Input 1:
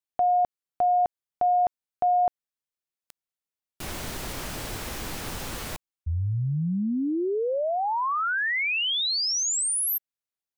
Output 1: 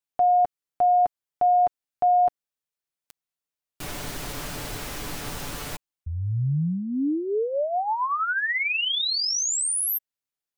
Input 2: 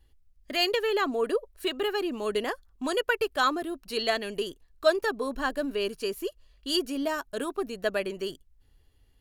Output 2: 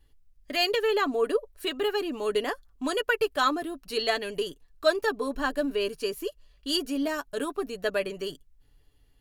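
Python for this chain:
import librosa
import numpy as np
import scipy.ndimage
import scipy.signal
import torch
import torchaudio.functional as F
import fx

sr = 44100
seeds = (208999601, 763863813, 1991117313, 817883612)

y = x + 0.4 * np.pad(x, (int(6.9 * sr / 1000.0), 0))[:len(x)]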